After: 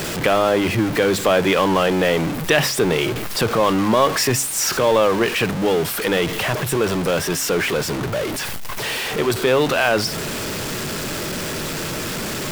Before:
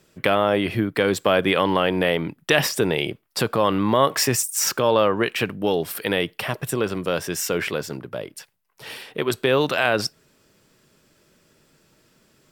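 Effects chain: jump at every zero crossing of -19 dBFS; treble shelf 5.9 kHz -4.5 dB; de-hum 67.79 Hz, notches 4

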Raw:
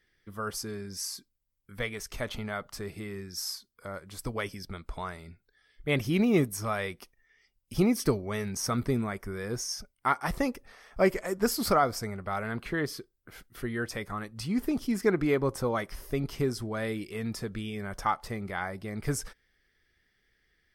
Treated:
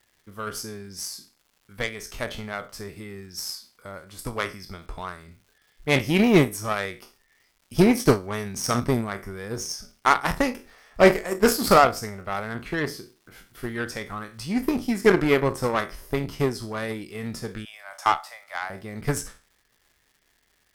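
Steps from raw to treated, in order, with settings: spectral sustain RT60 0.35 s; 17.65–18.70 s: steep high-pass 580 Hz 72 dB/octave; Chebyshev shaper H 2 -18 dB, 7 -21 dB, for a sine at -11 dBFS; crackle 380 per s -58 dBFS; endings held to a fixed fall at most 280 dB/s; trim +7.5 dB

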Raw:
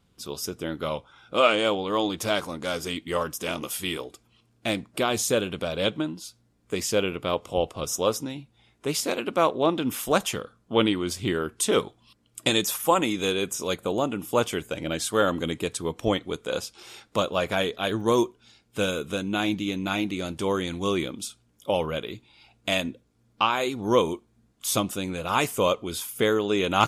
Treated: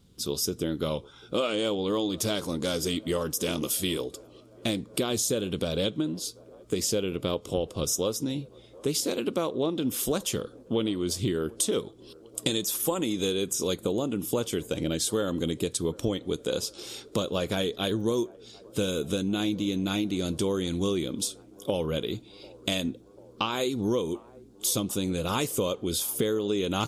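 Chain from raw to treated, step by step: high-order bell 1.3 kHz -9 dB 2.4 oct; compression, threshold -31 dBFS, peak gain reduction 13.5 dB; on a send: feedback echo behind a band-pass 743 ms, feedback 73%, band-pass 610 Hz, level -22 dB; on the sum: trim +6.5 dB

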